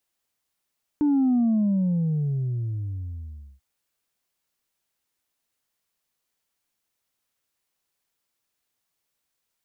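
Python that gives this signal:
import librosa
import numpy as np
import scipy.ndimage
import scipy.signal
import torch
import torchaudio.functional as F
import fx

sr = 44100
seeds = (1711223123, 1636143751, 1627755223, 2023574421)

y = fx.sub_drop(sr, level_db=-18.0, start_hz=300.0, length_s=2.59, drive_db=1, fade_s=2.24, end_hz=65.0)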